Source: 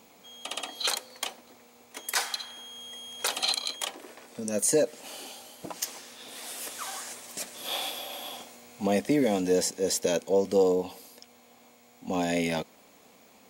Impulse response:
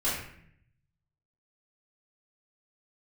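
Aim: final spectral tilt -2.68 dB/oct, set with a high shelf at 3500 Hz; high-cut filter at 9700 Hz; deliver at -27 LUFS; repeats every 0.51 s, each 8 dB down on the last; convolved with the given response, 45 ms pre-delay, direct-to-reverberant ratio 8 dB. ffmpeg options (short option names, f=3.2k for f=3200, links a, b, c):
-filter_complex "[0:a]lowpass=9.7k,highshelf=f=3.5k:g=3,aecho=1:1:510|1020|1530|2040|2550:0.398|0.159|0.0637|0.0255|0.0102,asplit=2[a][b];[1:a]atrim=start_sample=2205,adelay=45[c];[b][c]afir=irnorm=-1:irlink=0,volume=-17.5dB[d];[a][d]amix=inputs=2:normalize=0,volume=1.5dB"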